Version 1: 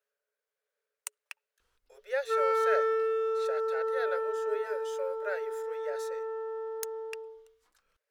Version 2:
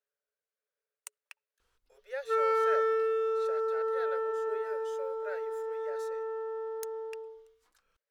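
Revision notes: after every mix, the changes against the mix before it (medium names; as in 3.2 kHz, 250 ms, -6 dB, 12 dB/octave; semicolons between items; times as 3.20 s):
speech -6.5 dB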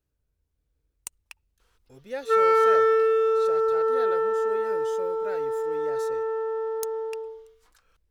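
speech: remove rippled Chebyshev high-pass 410 Hz, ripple 9 dB; background +8.0 dB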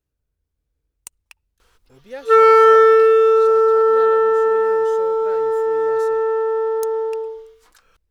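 background +9.0 dB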